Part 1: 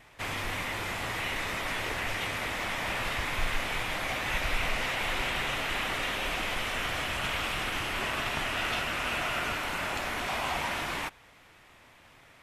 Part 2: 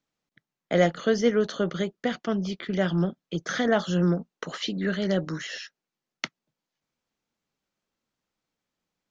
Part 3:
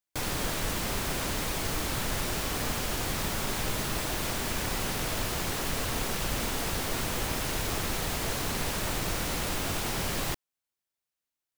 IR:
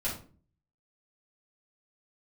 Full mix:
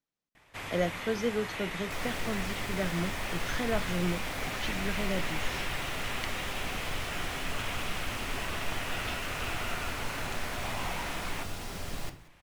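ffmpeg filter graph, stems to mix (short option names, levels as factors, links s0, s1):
-filter_complex "[0:a]adelay=350,volume=0.531[s0];[1:a]volume=0.376[s1];[2:a]highshelf=f=11000:g=-6.5,adelay=1750,volume=0.282,asplit=3[s2][s3][s4];[s3]volume=0.355[s5];[s4]volume=0.119[s6];[3:a]atrim=start_sample=2205[s7];[s5][s7]afir=irnorm=-1:irlink=0[s8];[s6]aecho=0:1:183|366|549|732|915:1|0.33|0.109|0.0359|0.0119[s9];[s0][s1][s2][s8][s9]amix=inputs=5:normalize=0"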